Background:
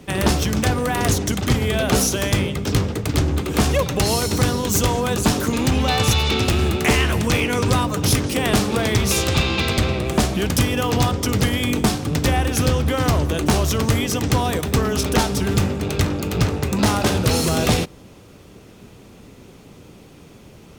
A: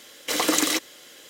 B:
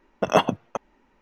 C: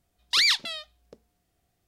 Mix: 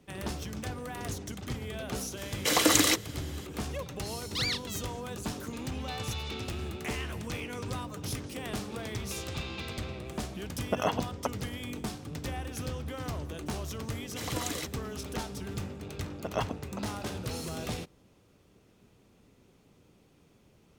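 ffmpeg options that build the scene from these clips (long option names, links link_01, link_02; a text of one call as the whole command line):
ffmpeg -i bed.wav -i cue0.wav -i cue1.wav -i cue2.wav -filter_complex "[1:a]asplit=2[link_01][link_02];[2:a]asplit=2[link_03][link_04];[0:a]volume=-18dB[link_05];[link_03]alimiter=limit=-14dB:level=0:latency=1:release=260[link_06];[link_01]atrim=end=1.29,asetpts=PTS-STARTPTS,volume=-1dB,afade=type=in:duration=0.004:curve=hsin,afade=type=out:start_time=1.286:duration=0.004:curve=hsin,adelay=2170[link_07];[3:a]atrim=end=1.87,asetpts=PTS-STARTPTS,volume=-11dB,afade=type=in:duration=0.004:curve=hsin,afade=type=out:start_time=1.866:duration=0.004:curve=hsin,adelay=4020[link_08];[link_06]atrim=end=1.21,asetpts=PTS-STARTPTS,volume=-1dB,afade=type=in:duration=0.004:curve=hsin,afade=type=out:start_time=1.206:duration=0.004:curve=hsin,adelay=463050S[link_09];[link_02]atrim=end=1.29,asetpts=PTS-STARTPTS,volume=-14dB,afade=type=in:duration=0.004:curve=hsin,afade=type=out:start_time=1.286:duration=0.004:curve=hsin,adelay=13880[link_10];[link_04]atrim=end=1.21,asetpts=PTS-STARTPTS,volume=-13.5dB,afade=type=in:duration=0.004:curve=hsin,afade=type=out:start_time=1.206:duration=0.004:curve=hsin,adelay=16020[link_11];[link_05][link_07][link_08][link_09][link_10][link_11]amix=inputs=6:normalize=0" out.wav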